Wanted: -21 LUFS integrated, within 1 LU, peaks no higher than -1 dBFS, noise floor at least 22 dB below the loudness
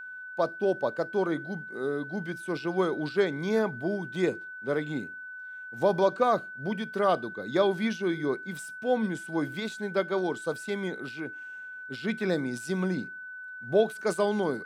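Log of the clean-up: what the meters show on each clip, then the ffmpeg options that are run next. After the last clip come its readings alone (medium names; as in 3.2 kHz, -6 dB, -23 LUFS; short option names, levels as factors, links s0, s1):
steady tone 1.5 kHz; tone level -39 dBFS; loudness -29.5 LUFS; peak level -11.0 dBFS; loudness target -21.0 LUFS
-> -af "bandreject=f=1500:w=30"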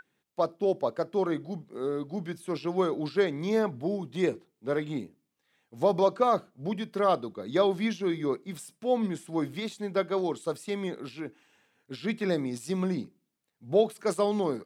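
steady tone not found; loudness -30.0 LUFS; peak level -11.0 dBFS; loudness target -21.0 LUFS
-> -af "volume=2.82"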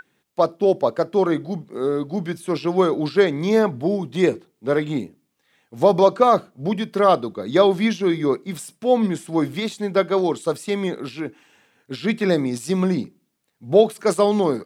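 loudness -21.0 LUFS; peak level -2.0 dBFS; noise floor -70 dBFS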